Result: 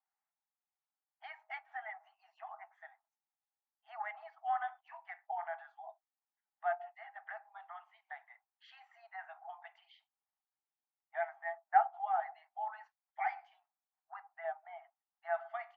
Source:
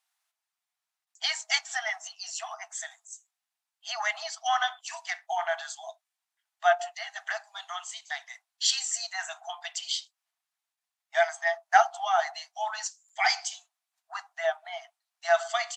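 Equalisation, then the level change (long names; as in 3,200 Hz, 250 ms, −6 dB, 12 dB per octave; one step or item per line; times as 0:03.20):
dynamic equaliser 1,000 Hz, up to −4 dB, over −39 dBFS, Q 1.1
Chebyshev high-pass with heavy ripple 570 Hz, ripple 9 dB
transistor ladder low-pass 1,500 Hz, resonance 30%
+3.0 dB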